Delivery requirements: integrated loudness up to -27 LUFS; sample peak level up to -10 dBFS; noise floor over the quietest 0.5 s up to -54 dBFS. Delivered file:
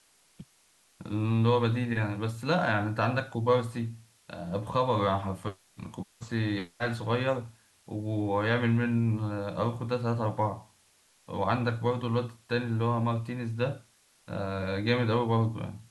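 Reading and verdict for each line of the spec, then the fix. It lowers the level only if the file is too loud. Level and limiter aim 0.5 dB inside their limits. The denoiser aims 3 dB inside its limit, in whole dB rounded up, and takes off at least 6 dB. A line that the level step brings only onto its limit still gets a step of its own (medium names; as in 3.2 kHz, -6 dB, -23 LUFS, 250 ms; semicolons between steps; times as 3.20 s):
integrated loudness -29.5 LUFS: pass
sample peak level -12.0 dBFS: pass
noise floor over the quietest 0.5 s -65 dBFS: pass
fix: none needed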